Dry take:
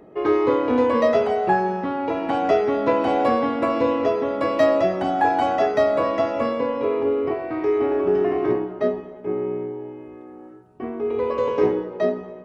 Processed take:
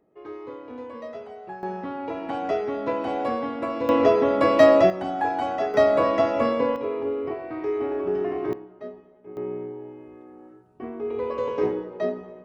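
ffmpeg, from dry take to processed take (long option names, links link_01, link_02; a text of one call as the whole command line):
ffmpeg -i in.wav -af "asetnsamples=nb_out_samples=441:pad=0,asendcmd='1.63 volume volume -7dB;3.89 volume volume 3dB;4.9 volume volume -6dB;5.74 volume volume 0.5dB;6.76 volume volume -6dB;8.53 volume volume -16dB;9.37 volume volume -5dB',volume=-19dB" out.wav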